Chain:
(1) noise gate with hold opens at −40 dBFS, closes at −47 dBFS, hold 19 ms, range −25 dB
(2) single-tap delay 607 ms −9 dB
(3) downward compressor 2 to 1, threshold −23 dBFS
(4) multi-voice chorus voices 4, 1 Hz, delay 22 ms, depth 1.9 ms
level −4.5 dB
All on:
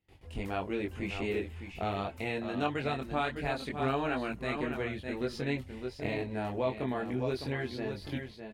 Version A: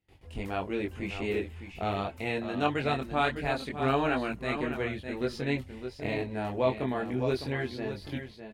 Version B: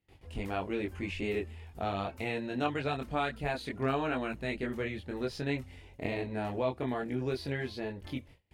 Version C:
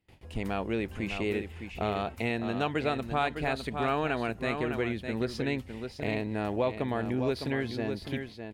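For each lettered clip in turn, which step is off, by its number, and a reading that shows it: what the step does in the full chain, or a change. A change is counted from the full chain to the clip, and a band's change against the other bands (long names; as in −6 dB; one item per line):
3, change in momentary loudness spread +3 LU
2, change in momentary loudness spread +2 LU
4, change in integrated loudness +3.0 LU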